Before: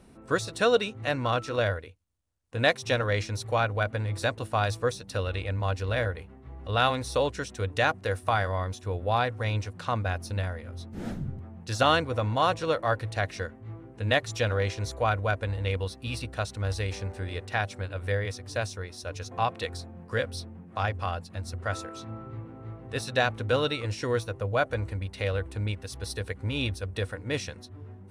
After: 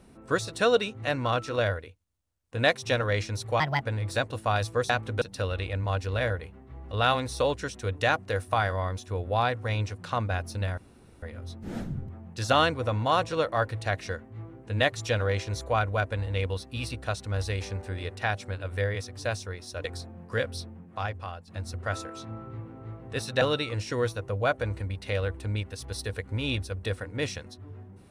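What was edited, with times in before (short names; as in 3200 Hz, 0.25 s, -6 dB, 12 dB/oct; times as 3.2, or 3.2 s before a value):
3.6–3.89 speed 135%
10.53 insert room tone 0.45 s
19.15–19.64 cut
20.47–21.27 fade out linear, to -11 dB
23.21–23.53 move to 4.97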